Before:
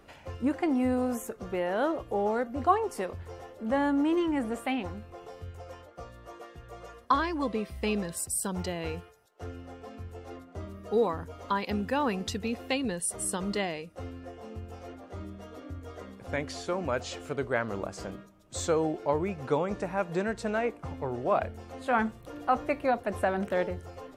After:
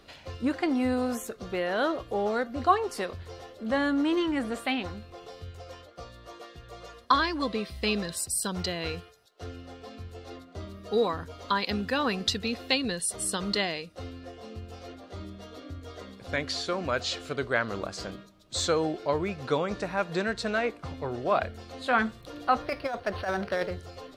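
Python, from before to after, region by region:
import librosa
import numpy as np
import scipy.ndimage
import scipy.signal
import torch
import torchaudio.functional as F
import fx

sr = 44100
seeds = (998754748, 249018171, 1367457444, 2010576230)

y = fx.chain(x, sr, fx.peak_eq(hz=250.0, db=-7.0, octaves=0.87),
    fx.over_compress(threshold_db=-28.0, ratio=-0.5),
    fx.resample_linear(factor=6), at=(22.62, 23.71))
y = fx.peak_eq(y, sr, hz=4100.0, db=12.5, octaves=0.87)
y = fx.notch(y, sr, hz=870.0, q=12.0)
y = fx.dynamic_eq(y, sr, hz=1500.0, q=1.5, threshold_db=-46.0, ratio=4.0, max_db=4)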